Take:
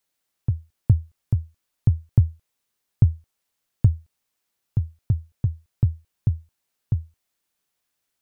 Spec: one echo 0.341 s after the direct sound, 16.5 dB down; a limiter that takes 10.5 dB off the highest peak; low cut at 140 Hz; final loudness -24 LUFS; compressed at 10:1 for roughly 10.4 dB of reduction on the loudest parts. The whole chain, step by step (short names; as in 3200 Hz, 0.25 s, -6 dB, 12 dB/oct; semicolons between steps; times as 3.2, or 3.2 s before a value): HPF 140 Hz; compressor 10:1, threshold -27 dBFS; limiter -26 dBFS; echo 0.341 s -16.5 dB; gain +20.5 dB